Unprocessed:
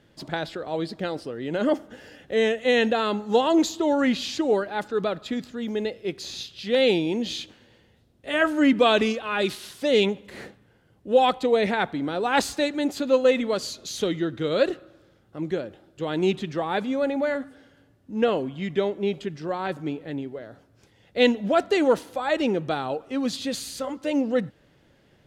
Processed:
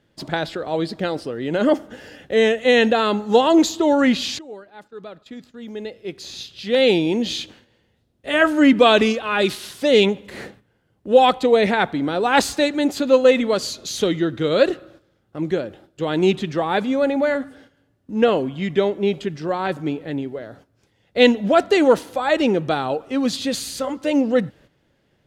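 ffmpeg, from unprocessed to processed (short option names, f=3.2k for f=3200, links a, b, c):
-filter_complex "[0:a]asplit=2[a][b];[a]atrim=end=4.39,asetpts=PTS-STARTPTS,afade=t=out:st=4.386:d=0.004:c=hsin:silence=0.0944061[c];[b]atrim=start=4.39,asetpts=PTS-STARTPTS,afade=t=in:d=2.67:c=qua:silence=0.0944061[d];[c][d]concat=n=2:v=0:a=1,agate=range=-10dB:threshold=-52dB:ratio=16:detection=peak,volume=5.5dB"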